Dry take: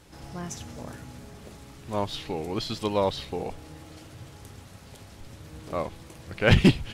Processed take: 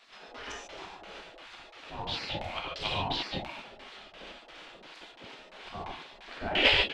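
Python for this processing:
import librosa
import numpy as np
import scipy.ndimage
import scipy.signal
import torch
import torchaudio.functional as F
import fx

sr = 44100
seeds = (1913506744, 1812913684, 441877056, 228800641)

y = fx.filter_lfo_lowpass(x, sr, shape='square', hz=2.9, low_hz=450.0, high_hz=3200.0, q=1.9)
y = fx.rev_gated(y, sr, seeds[0], gate_ms=170, shape='flat', drr_db=-2.5)
y = fx.spec_gate(y, sr, threshold_db=-15, keep='weak')
y = y * 10.0 ** (1.5 / 20.0)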